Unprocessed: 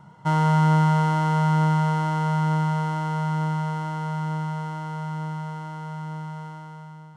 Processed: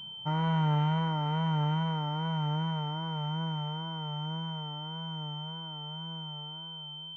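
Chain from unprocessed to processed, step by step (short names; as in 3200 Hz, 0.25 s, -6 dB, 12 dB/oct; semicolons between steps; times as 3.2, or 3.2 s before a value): wow and flutter 76 cents; pulse-width modulation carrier 3100 Hz; gain -8.5 dB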